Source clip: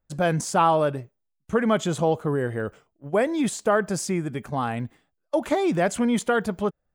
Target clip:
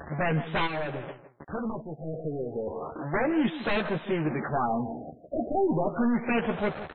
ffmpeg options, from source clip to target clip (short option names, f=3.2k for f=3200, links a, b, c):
-filter_complex "[0:a]aeval=exprs='val(0)+0.5*0.0398*sgn(val(0))':c=same,highpass=f=300:p=1,equalizer=f=720:t=o:w=0.27:g=3,aeval=exprs='0.0891*(abs(mod(val(0)/0.0891+3,4)-2)-1)':c=same,highshelf=f=6k:t=q:w=3:g=10.5,asplit=2[a][b];[b]adelay=13,volume=-6dB[c];[a][c]amix=inputs=2:normalize=0,asplit=2[d][e];[e]adelay=158,lowpass=f=2k:p=1,volume=-13dB,asplit=2[f][g];[g]adelay=158,lowpass=f=2k:p=1,volume=0.21[h];[d][f][h]amix=inputs=3:normalize=0,asplit=3[i][j][k];[i]afade=t=out:st=0.66:d=0.02[l];[j]acompressor=threshold=-27dB:ratio=10,afade=t=in:st=0.66:d=0.02,afade=t=out:st=2.66:d=0.02[m];[k]afade=t=in:st=2.66:d=0.02[n];[l][m][n]amix=inputs=3:normalize=0,afftfilt=real='re*lt(b*sr/1024,730*pow(4300/730,0.5+0.5*sin(2*PI*0.33*pts/sr)))':imag='im*lt(b*sr/1024,730*pow(4300/730,0.5+0.5*sin(2*PI*0.33*pts/sr)))':win_size=1024:overlap=0.75"